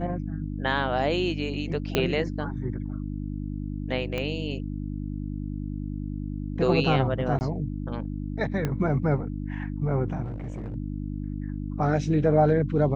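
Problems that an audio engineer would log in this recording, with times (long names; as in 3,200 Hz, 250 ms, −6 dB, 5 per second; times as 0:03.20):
mains hum 50 Hz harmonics 6 −32 dBFS
0:01.95: click −8 dBFS
0:04.18: click −17 dBFS
0:07.39–0:07.41: drop-out 19 ms
0:08.65: click −14 dBFS
0:10.24–0:10.76: clipping −29.5 dBFS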